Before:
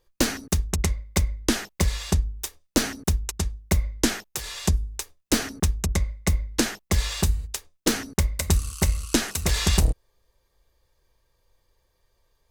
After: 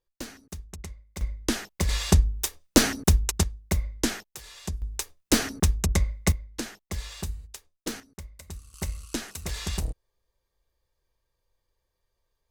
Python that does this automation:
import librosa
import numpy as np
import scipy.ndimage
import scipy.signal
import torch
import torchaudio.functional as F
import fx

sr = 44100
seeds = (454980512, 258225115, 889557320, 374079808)

y = fx.gain(x, sr, db=fx.steps((0.0, -16.0), (1.21, -4.0), (1.89, 3.5), (3.43, -4.0), (4.23, -11.0), (4.82, 0.5), (6.32, -11.0), (8.0, -19.5), (8.74, -10.0)))